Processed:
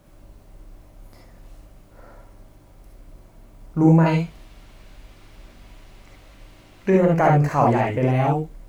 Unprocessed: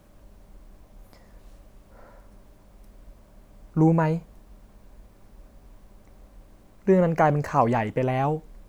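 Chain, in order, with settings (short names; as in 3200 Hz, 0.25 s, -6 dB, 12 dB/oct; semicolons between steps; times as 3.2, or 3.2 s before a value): 4.06–6.9 bell 3000 Hz +12.5 dB 2.2 oct; non-linear reverb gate 90 ms rising, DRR -1 dB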